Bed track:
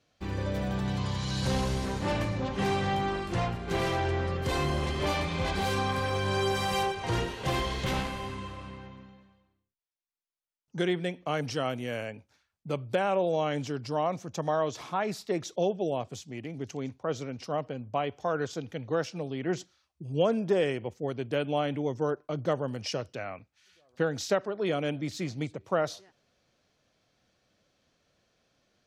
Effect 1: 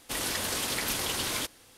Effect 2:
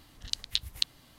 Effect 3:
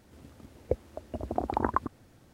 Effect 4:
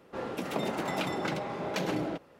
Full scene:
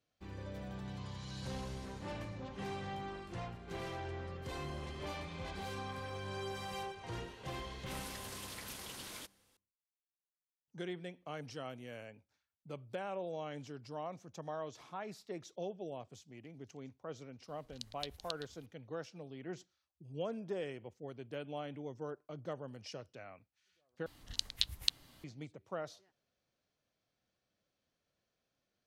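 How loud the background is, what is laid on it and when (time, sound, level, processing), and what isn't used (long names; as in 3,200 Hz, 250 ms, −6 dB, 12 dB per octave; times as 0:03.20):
bed track −14 dB
0:07.80: mix in 1 −16.5 dB
0:17.48: mix in 2 −14.5 dB + single-tap delay 385 ms −10.5 dB
0:24.06: overwrite with 2 −3.5 dB
not used: 3, 4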